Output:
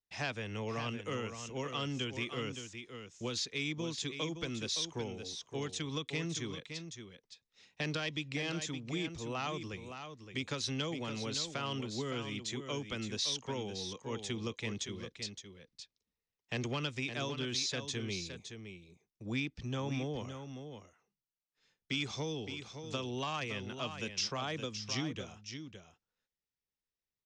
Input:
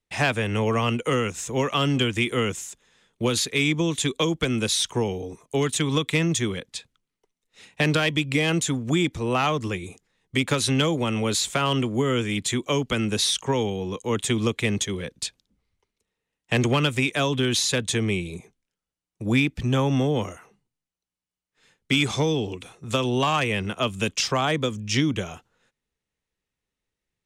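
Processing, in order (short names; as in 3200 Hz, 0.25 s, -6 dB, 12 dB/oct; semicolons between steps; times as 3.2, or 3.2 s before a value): ladder low-pass 6300 Hz, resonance 50%; on a send: echo 0.566 s -8.5 dB; on the sum: gain -6 dB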